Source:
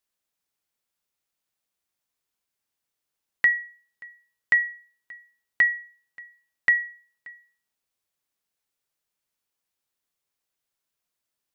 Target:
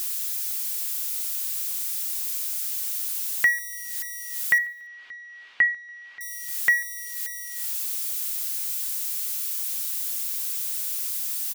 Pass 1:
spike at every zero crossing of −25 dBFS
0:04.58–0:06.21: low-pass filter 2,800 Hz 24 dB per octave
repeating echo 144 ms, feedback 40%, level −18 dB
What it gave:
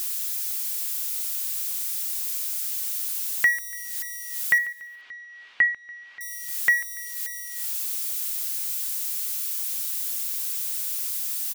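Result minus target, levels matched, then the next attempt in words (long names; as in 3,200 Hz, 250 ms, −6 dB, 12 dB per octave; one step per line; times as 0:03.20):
echo-to-direct +8 dB
spike at every zero crossing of −25 dBFS
0:04.58–0:06.21: low-pass filter 2,800 Hz 24 dB per octave
repeating echo 144 ms, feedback 40%, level −26 dB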